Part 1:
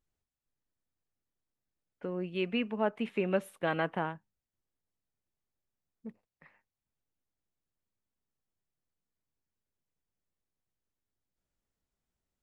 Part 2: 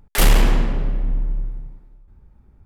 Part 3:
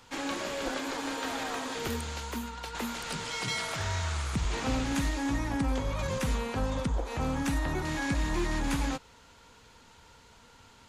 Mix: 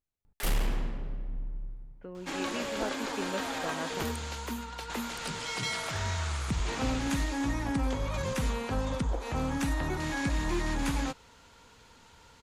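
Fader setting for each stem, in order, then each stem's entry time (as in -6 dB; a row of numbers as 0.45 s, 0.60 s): -7.0 dB, -15.0 dB, -0.5 dB; 0.00 s, 0.25 s, 2.15 s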